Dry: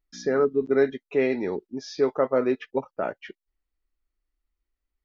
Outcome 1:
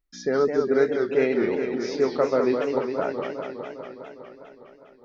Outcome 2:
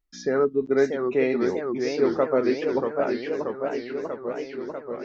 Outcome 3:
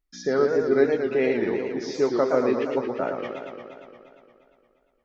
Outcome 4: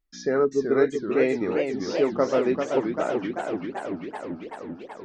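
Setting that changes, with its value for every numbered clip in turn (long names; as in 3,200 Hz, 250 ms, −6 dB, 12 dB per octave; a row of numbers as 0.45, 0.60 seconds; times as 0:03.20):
feedback echo with a swinging delay time, delay time: 204, 638, 117, 386 milliseconds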